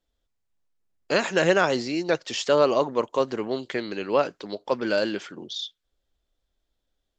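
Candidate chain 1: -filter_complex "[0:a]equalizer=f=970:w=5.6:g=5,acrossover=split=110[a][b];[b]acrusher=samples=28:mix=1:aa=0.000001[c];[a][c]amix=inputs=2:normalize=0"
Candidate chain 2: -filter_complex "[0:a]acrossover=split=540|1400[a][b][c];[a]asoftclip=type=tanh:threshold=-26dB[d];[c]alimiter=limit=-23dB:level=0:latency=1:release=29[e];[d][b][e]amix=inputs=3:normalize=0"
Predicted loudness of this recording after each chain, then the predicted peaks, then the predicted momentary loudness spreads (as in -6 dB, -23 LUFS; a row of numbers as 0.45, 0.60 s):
-24.0, -27.0 LUFS; -6.0, -11.5 dBFS; 16, 10 LU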